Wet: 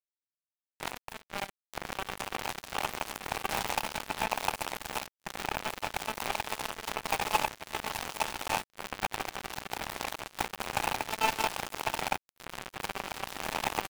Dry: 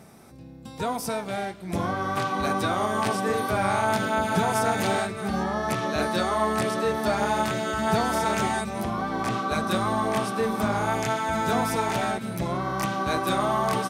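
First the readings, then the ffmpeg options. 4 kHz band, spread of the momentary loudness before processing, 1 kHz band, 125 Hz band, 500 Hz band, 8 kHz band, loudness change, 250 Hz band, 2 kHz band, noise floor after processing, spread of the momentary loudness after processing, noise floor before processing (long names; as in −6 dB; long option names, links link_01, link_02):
−2.5 dB, 6 LU, −8.5 dB, −16.5 dB, −14.0 dB, −3.5 dB, −9.0 dB, −17.5 dB, −6.0 dB, below −85 dBFS, 9 LU, −43 dBFS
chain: -filter_complex "[0:a]asplit=2[link_01][link_02];[link_02]adelay=169.1,volume=-28dB,highshelf=frequency=4000:gain=-3.8[link_03];[link_01][link_03]amix=inputs=2:normalize=0,acrossover=split=560|5800[link_04][link_05][link_06];[link_05]acrusher=bits=2:mode=log:mix=0:aa=0.000001[link_07];[link_04][link_07][link_06]amix=inputs=3:normalize=0,flanger=delay=2.8:depth=5.7:regen=-72:speed=1.3:shape=sinusoidal,asplit=2[link_08][link_09];[link_09]acompressor=threshold=-43dB:ratio=20,volume=-1dB[link_10];[link_08][link_10]amix=inputs=2:normalize=0,aeval=exprs='(mod(15*val(0)+1,2)-1)/15':channel_layout=same,equalizer=frequency=840:width=2.8:gain=14.5,aeval=exprs='0.237*(cos(1*acos(clip(val(0)/0.237,-1,1)))-cos(1*PI/2))+0.00422*(cos(5*acos(clip(val(0)/0.237,-1,1)))-cos(5*PI/2))+0.00266*(cos(6*acos(clip(val(0)/0.237,-1,1)))-cos(6*PI/2))':channel_layout=same,acrusher=bits=2:mix=0:aa=0.5"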